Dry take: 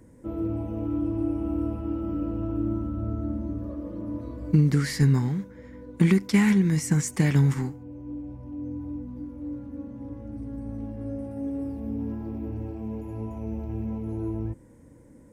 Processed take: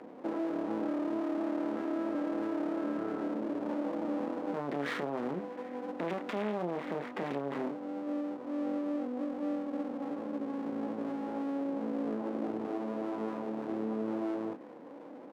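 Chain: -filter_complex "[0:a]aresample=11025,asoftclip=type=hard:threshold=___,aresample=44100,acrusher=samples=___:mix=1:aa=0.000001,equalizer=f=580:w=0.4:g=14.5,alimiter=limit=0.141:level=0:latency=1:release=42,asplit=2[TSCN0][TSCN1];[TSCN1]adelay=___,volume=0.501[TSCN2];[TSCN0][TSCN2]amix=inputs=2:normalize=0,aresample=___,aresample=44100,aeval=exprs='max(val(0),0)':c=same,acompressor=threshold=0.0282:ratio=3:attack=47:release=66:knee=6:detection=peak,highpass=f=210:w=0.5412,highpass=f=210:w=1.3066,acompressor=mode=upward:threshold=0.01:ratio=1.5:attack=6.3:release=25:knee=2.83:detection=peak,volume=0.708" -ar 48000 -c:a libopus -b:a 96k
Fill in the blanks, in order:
0.0668, 7, 28, 8000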